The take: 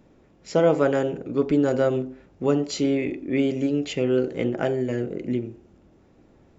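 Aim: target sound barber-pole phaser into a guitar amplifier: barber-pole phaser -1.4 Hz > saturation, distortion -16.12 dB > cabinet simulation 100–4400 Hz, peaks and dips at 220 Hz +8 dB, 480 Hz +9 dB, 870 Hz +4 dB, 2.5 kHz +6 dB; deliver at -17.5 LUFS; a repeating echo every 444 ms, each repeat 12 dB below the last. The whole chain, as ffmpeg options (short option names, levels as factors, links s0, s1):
-filter_complex "[0:a]aecho=1:1:444|888|1332:0.251|0.0628|0.0157,asplit=2[s0][s1];[s1]afreqshift=-1.4[s2];[s0][s2]amix=inputs=2:normalize=1,asoftclip=threshold=0.15,highpass=100,equalizer=f=220:t=q:w=4:g=8,equalizer=f=480:t=q:w=4:g=9,equalizer=f=870:t=q:w=4:g=4,equalizer=f=2500:t=q:w=4:g=6,lowpass=f=4400:w=0.5412,lowpass=f=4400:w=1.3066,volume=2"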